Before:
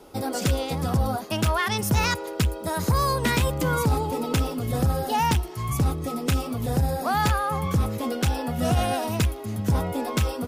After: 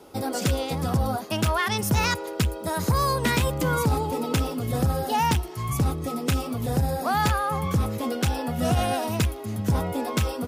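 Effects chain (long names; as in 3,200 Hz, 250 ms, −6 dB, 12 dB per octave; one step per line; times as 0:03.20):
high-pass filter 59 Hz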